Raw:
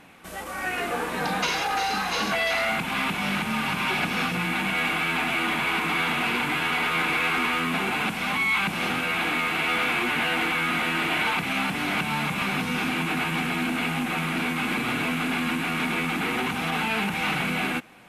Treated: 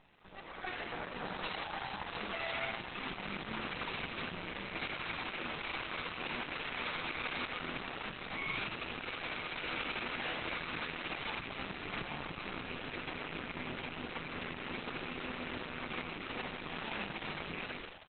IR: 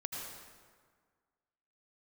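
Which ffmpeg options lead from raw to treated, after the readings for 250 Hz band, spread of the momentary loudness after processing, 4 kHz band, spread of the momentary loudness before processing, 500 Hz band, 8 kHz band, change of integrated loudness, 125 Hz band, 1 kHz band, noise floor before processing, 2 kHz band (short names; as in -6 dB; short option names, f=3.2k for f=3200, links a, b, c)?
-17.0 dB, 4 LU, -13.0 dB, 3 LU, -11.5 dB, under -40 dB, -15.0 dB, -15.0 dB, -15.0 dB, -32 dBFS, -15.5 dB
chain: -filter_complex "[0:a]asplit=9[a][b][c][d][e][f][g][h][i];[b]adelay=82,afreqshift=130,volume=-6dB[j];[c]adelay=164,afreqshift=260,volume=-10.4dB[k];[d]adelay=246,afreqshift=390,volume=-14.9dB[l];[e]adelay=328,afreqshift=520,volume=-19.3dB[m];[f]adelay=410,afreqshift=650,volume=-23.7dB[n];[g]adelay=492,afreqshift=780,volume=-28.2dB[o];[h]adelay=574,afreqshift=910,volume=-32.6dB[p];[i]adelay=656,afreqshift=1040,volume=-37.1dB[q];[a][j][k][l][m][n][o][p][q]amix=inputs=9:normalize=0,aeval=exprs='max(val(0),0)':c=same,volume=-7.5dB" -ar 48000 -c:a libopus -b:a 8k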